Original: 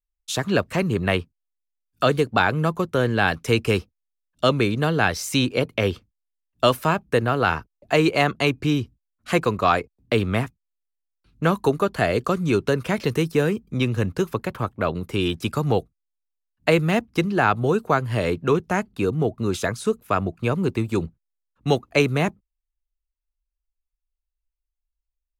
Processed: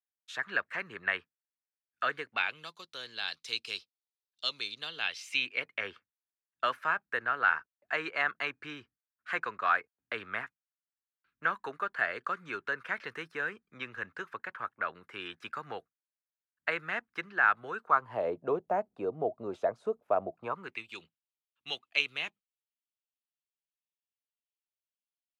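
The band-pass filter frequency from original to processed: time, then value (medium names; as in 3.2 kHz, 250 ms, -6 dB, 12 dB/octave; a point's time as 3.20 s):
band-pass filter, Q 3.4
2.20 s 1.7 kHz
2.70 s 4.1 kHz
4.71 s 4.1 kHz
5.91 s 1.6 kHz
17.79 s 1.6 kHz
18.28 s 650 Hz
20.37 s 650 Hz
20.83 s 3 kHz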